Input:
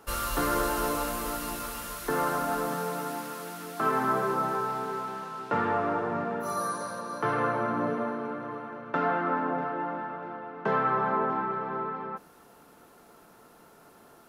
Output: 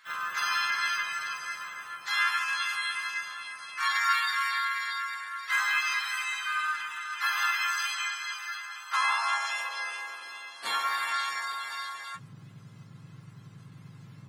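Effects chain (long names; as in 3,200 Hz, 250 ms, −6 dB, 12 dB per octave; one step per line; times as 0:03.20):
frequency axis turned over on the octave scale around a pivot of 1,200 Hz
high-pass filter sweep 1,400 Hz → 120 Hz, 0:08.72–0:11.10
pitch-shifted copies added +4 semitones −1 dB
level −4.5 dB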